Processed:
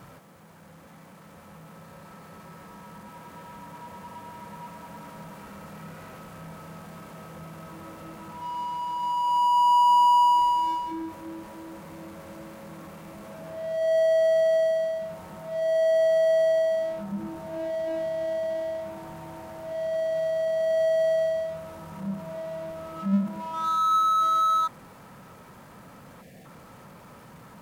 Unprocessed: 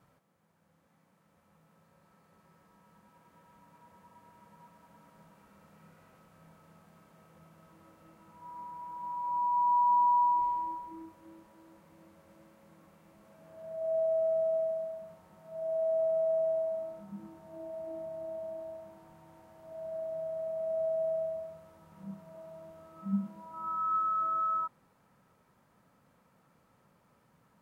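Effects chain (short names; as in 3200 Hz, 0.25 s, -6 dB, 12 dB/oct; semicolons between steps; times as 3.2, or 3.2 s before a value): spectral delete 26.22–26.45, 780–1600 Hz; power-law curve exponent 0.7; gain +6 dB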